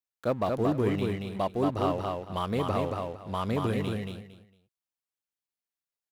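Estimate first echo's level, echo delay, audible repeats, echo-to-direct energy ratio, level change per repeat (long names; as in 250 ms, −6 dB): −3.5 dB, 228 ms, 3, −3.5 dB, −13.0 dB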